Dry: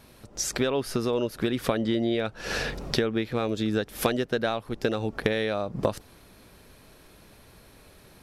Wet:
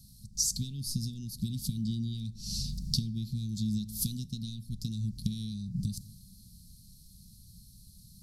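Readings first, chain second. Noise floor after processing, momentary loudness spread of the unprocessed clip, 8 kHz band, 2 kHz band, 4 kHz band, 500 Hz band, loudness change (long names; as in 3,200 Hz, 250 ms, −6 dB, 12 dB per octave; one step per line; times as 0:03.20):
−55 dBFS, 4 LU, +1.5 dB, below −35 dB, −4.0 dB, below −35 dB, −6.5 dB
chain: Chebyshev band-stop filter 200–4,400 Hz, order 4
dense smooth reverb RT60 1.2 s, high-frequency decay 0.35×, DRR 14 dB
level +2 dB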